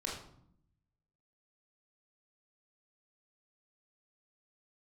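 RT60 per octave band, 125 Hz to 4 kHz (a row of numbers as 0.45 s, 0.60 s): 1.3 s, 1.1 s, 0.70 s, 0.65 s, 0.50 s, 0.45 s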